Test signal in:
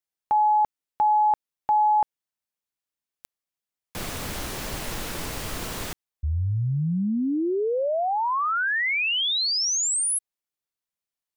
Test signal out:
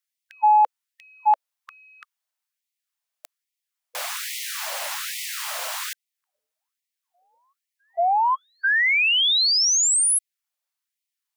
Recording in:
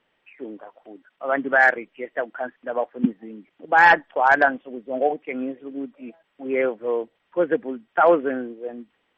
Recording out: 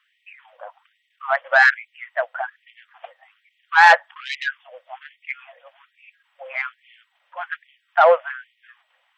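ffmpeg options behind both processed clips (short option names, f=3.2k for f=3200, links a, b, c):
-af "acontrast=69,afftfilt=real='re*gte(b*sr/1024,480*pow(1900/480,0.5+0.5*sin(2*PI*1.2*pts/sr)))':imag='im*gte(b*sr/1024,480*pow(1900/480,0.5+0.5*sin(2*PI*1.2*pts/sr)))':win_size=1024:overlap=0.75,volume=-1.5dB"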